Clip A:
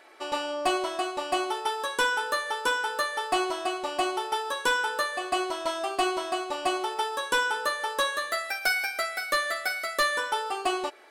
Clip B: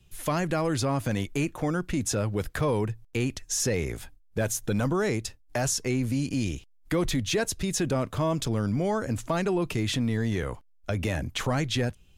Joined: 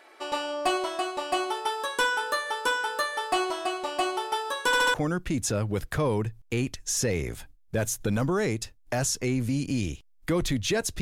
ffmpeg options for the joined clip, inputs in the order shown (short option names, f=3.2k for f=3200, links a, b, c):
-filter_complex "[0:a]apad=whole_dur=11.01,atrim=end=11.01,asplit=4[a][b][c][d];[a]atrim=end=4.732[e];[b]atrim=start=4.658:end=4.732[f];[c]atrim=start=4.658:end=4.732[g];[d]atrim=start=4.658:end=4.732[h];[1:a]atrim=start=1.568:end=7.64[i];[e][f]acrossfade=d=0.004:c1=hsin:c2=hsin[j];[j][g]acrossfade=d=0.004:c1=hsin:c2=hsin[k];[k][h]acrossfade=d=0.004:c1=hsin:c2=hsin[l];[l][i]acrossfade=d=0.004:c1=hsin:c2=hsin"